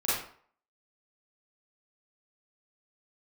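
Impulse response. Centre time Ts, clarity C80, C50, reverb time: 65 ms, 4.5 dB, −1.0 dB, 0.50 s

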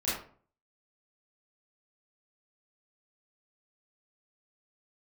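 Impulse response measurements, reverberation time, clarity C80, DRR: 0.45 s, 7.0 dB, −11.0 dB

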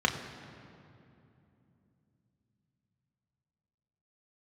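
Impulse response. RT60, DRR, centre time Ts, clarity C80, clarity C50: 2.8 s, 1.5 dB, 34 ms, 9.0 dB, 8.5 dB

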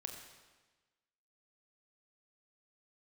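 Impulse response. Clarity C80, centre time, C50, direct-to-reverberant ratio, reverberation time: 6.5 dB, 38 ms, 5.5 dB, 3.0 dB, 1.3 s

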